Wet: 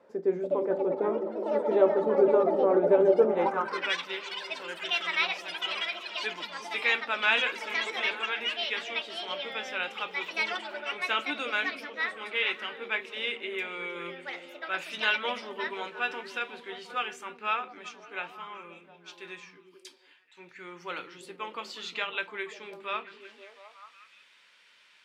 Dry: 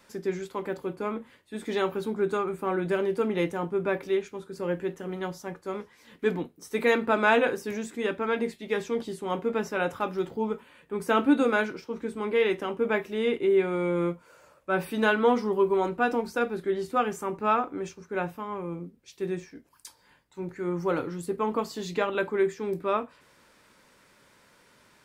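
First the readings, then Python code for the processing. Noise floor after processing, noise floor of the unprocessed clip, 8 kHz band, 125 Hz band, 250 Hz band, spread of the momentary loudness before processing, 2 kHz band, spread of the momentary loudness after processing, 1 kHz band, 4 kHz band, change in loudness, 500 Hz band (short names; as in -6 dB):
-60 dBFS, -61 dBFS, -3.5 dB, under -10 dB, -8.0 dB, 13 LU, +2.0 dB, 16 LU, -3.5 dB, +9.0 dB, -1.0 dB, -2.0 dB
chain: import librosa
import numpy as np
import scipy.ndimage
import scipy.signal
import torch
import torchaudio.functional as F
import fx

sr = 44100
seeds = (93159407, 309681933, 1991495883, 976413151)

y = fx.echo_stepped(x, sr, ms=178, hz=160.0, octaves=0.7, feedback_pct=70, wet_db=-3.0)
y = fx.echo_pitch(y, sr, ms=338, semitones=7, count=3, db_per_echo=-6.0)
y = fx.filter_sweep_bandpass(y, sr, from_hz=520.0, to_hz=2900.0, start_s=3.24, end_s=3.96, q=2.1)
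y = y * 10.0 ** (7.5 / 20.0)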